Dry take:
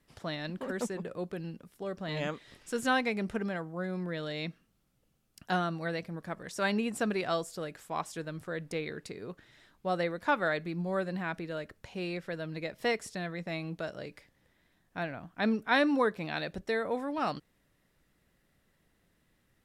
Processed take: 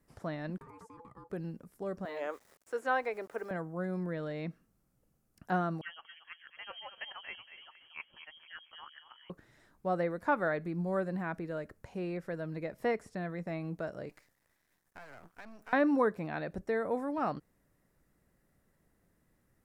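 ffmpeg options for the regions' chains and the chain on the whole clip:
-filter_complex "[0:a]asettb=1/sr,asplit=3[s0][s1][s2];[s0]atrim=end=0.584[s3];[s1]atrim=start=0.58:end=1.3,asetpts=PTS-STARTPTS,afade=t=in:d=0.004:c=qsin,afade=t=out:st=0.716:d=0.004:c=qsin,agate=range=0.0224:threshold=0.00891:ratio=3:release=100:detection=peak,acompressor=threshold=0.00562:ratio=10:attack=3.2:release=140:knee=1:detection=peak,aeval=exprs='val(0)*sin(2*PI*670*n/s)':c=same[s4];[s2]atrim=start=1.296[s5];[s3][s4]acrossfade=d=0.004:c1=hsin:c2=qsin[s6];[s6][s5]acrossfade=d=0.004:c1=qsin:c2=hsin,asettb=1/sr,asplit=3[s7][s8][s9];[s7]atrim=end=2.054[s10];[s8]atrim=start=2.05:end=3.51,asetpts=PTS-STARTPTS,afade=t=in:d=0.004:c=qsin,afade=t=out:st=1.456:d=0.004:c=qsin,highpass=f=380:w=0.5412,highpass=f=380:w=1.3066,aeval=exprs='val(0)*gte(abs(val(0)),0.00237)':c=same[s11];[s9]atrim=start=3.506[s12];[s10][s11]acrossfade=d=0.004:c1=hsin:c2=qsin[s13];[s13][s12]acrossfade=d=0.004:c1=qsin:c2=hsin,asettb=1/sr,asplit=3[s14][s15][s16];[s14]atrim=end=5.814[s17];[s15]atrim=start=5.81:end=9.3,asetpts=PTS-STARTPTS,afade=t=in:d=0.004:c=qsin,afade=t=out:st=3.486:d=0.004:c=qsin,acrossover=split=420[s18][s19];[s18]aeval=exprs='val(0)*(1-1/2+1/2*cos(2*PI*7.1*n/s))':c=same[s20];[s19]aeval=exprs='val(0)*(1-1/2-1/2*cos(2*PI*7.1*n/s))':c=same[s21];[s20][s21]amix=inputs=2:normalize=0,asplit=2[s22][s23];[s23]adelay=231,lowpass=f=1800:p=1,volume=0.376,asplit=2[s24][s25];[s25]adelay=231,lowpass=f=1800:p=1,volume=0.43,asplit=2[s26][s27];[s27]adelay=231,lowpass=f=1800:p=1,volume=0.43,asplit=2[s28][s29];[s29]adelay=231,lowpass=f=1800:p=1,volume=0.43,asplit=2[s30][s31];[s31]adelay=231,lowpass=f=1800:p=1,volume=0.43[s32];[s22][s24][s26][s28][s30][s32]amix=inputs=6:normalize=0,atrim=end_sample=153909,lowpass=f=2900:t=q:w=0.5098,lowpass=f=2900:t=q:w=0.6013,lowpass=f=2900:t=q:w=0.9,lowpass=f=2900:t=q:w=2.563,afreqshift=-3400[s33];[s16]atrim=start=9.296[s34];[s17][s33]acrossfade=d=0.004:c1=hsin:c2=qsin[s35];[s35][s34]acrossfade=d=0.004:c1=qsin:c2=hsin,asettb=1/sr,asplit=3[s36][s37][s38];[s36]atrim=end=14.094[s39];[s37]atrim=start=14.09:end=15.73,asetpts=PTS-STARTPTS,afade=t=in:d=0.004:c=qsin,afade=t=out:st=1.636:d=0.004:c=qsin,aeval=exprs='max(val(0),0)':c=same,acompressor=threshold=0.00891:ratio=8:attack=3.2:release=140:knee=1:detection=peak,tiltshelf=f=900:g=-6.5[s40];[s38]atrim=start=15.726[s41];[s39][s40]acrossfade=d=0.004:c1=hsin:c2=qsin[s42];[s42][s41]acrossfade=d=0.004:c1=qsin:c2=hsin,acrossover=split=3500[s43][s44];[s44]acompressor=threshold=0.00126:ratio=4:attack=1:release=60[s45];[s43][s45]amix=inputs=2:normalize=0,equalizer=f=3300:t=o:w=1.3:g=-12"

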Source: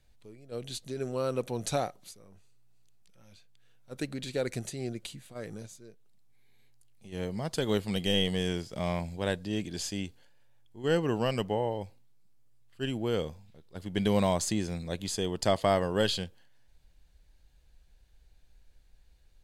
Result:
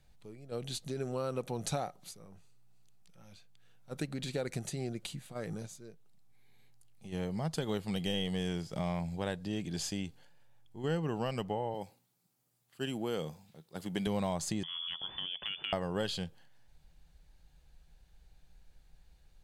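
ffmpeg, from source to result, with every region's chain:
-filter_complex "[0:a]asettb=1/sr,asplit=3[s0][s1][s2];[s0]atrim=end=11.744[s3];[s1]atrim=start=11.74:end=14.07,asetpts=PTS-STARTPTS,afade=t=in:d=0.004:c=qsin,afade=t=out:st=2.326:d=0.004:c=qsin,highpass=160,highshelf=f=7200:g=10[s4];[s2]atrim=start=14.066[s5];[s3][s4]acrossfade=d=0.004:c1=hsin:c2=qsin[s6];[s6][s5]acrossfade=d=0.004:c1=qsin:c2=hsin,asettb=1/sr,asplit=3[s7][s8][s9];[s7]atrim=end=14.634[s10];[s8]atrim=start=14.63:end=15.73,asetpts=PTS-STARTPTS,afade=t=in:d=0.004:c=qsin,afade=t=out:st=1.096:d=0.004:c=qsin,lowpass=f=3000:t=q:w=0.5098,lowpass=f=3000:t=q:w=0.6013,lowpass=f=3000:t=q:w=0.9,lowpass=f=3000:t=q:w=2.563,afreqshift=-3500,acompressor=threshold=0.02:ratio=6:attack=3.2:release=140:knee=1:detection=peak[s11];[s9]atrim=start=15.726[s12];[s10][s11]acrossfade=d=0.004:c1=hsin:c2=qsin[s13];[s13][s12]acrossfade=d=0.004:c1=qsin:c2=hsin,equalizer=f=160:t=o:w=0.33:g=9,equalizer=f=800:t=o:w=0.33:g=5,equalizer=f=1250:t=o:w=0.33:g=3,acompressor=threshold=0.02:ratio=2.5"

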